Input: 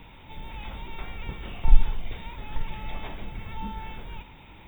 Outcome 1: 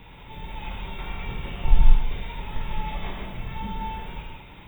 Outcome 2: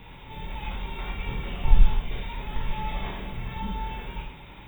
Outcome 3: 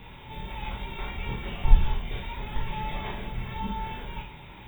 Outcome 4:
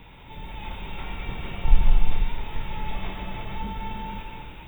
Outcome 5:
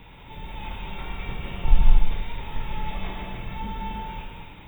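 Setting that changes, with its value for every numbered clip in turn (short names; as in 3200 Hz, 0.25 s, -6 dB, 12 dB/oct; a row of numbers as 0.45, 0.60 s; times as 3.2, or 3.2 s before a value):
non-linear reverb, gate: 220, 130, 80, 530, 340 ms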